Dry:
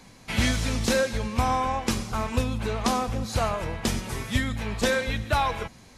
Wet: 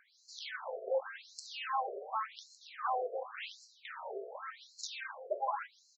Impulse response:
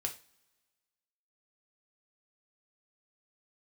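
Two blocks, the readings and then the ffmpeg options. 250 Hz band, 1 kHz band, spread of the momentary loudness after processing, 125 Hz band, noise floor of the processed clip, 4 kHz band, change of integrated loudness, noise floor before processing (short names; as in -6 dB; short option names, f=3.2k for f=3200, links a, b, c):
under -30 dB, -9.5 dB, 11 LU, under -40 dB, -68 dBFS, -15.0 dB, -13.0 dB, -51 dBFS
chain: -af "highpass=f=110:p=1,equalizer=f=2.7k:t=o:w=0.35:g=-11,aresample=16000,aeval=exprs='(mod(5.62*val(0)+1,2)-1)/5.62':c=same,aresample=44100,highshelf=f=1.7k:t=q:w=1.5:g=-6.5,asoftclip=type=hard:threshold=-27dB,aecho=1:1:159:0.251,afftfilt=real='re*between(b*sr/1024,490*pow(5800/490,0.5+0.5*sin(2*PI*0.89*pts/sr))/1.41,490*pow(5800/490,0.5+0.5*sin(2*PI*0.89*pts/sr))*1.41)':imag='im*between(b*sr/1024,490*pow(5800/490,0.5+0.5*sin(2*PI*0.89*pts/sr))/1.41,490*pow(5800/490,0.5+0.5*sin(2*PI*0.89*pts/sr))*1.41)':win_size=1024:overlap=0.75"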